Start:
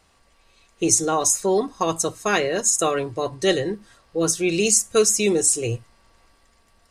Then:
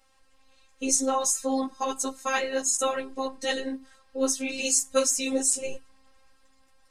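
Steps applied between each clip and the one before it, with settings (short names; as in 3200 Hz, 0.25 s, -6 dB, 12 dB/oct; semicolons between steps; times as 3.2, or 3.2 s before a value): robotiser 265 Hz; ensemble effect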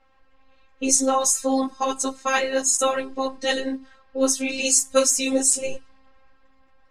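low-pass opened by the level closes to 2200 Hz, open at -23.5 dBFS; gain +5 dB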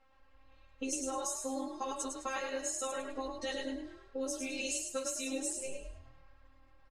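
compressor 4:1, threshold -30 dBFS, peak gain reduction 15 dB; on a send: frequency-shifting echo 0.104 s, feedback 31%, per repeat +39 Hz, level -5 dB; on the sum: gain -6.5 dB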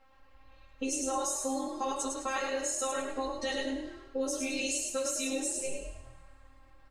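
two-slope reverb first 0.9 s, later 2.3 s, from -22 dB, DRR 8.5 dB; in parallel at +0.5 dB: limiter -27.5 dBFS, peak gain reduction 8 dB; on the sum: gain -1.5 dB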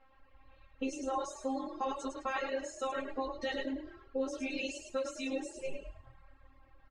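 LPF 3300 Hz 12 dB/oct; reverb removal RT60 0.7 s; gain -1 dB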